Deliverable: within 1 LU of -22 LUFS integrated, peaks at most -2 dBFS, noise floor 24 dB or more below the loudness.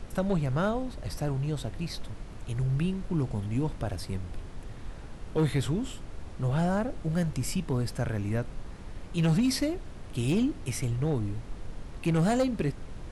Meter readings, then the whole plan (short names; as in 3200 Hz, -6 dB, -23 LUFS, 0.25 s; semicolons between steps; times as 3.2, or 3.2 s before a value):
clipped 1.1%; flat tops at -20.0 dBFS; noise floor -43 dBFS; noise floor target -55 dBFS; loudness -30.5 LUFS; peak -20.0 dBFS; loudness target -22.0 LUFS
-> clip repair -20 dBFS; noise print and reduce 12 dB; gain +8.5 dB